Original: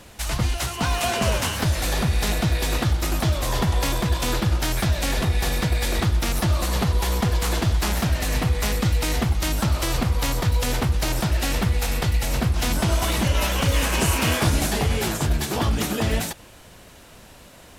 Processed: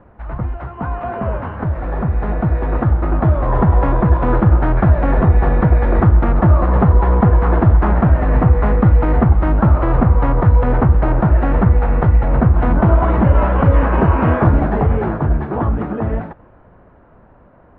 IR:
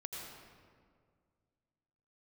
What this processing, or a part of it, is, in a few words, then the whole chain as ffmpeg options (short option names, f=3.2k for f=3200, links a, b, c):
action camera in a waterproof case: -af "lowpass=f=1.4k:w=0.5412,lowpass=f=1.4k:w=1.3066,dynaudnorm=f=270:g=21:m=11.5dB,volume=1dB" -ar 48000 -c:a aac -b:a 96k